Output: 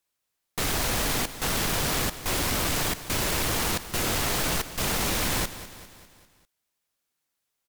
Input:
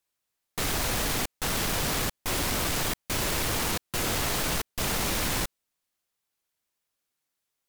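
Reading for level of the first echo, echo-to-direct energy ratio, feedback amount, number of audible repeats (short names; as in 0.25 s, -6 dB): -14.5 dB, -13.0 dB, 54%, 4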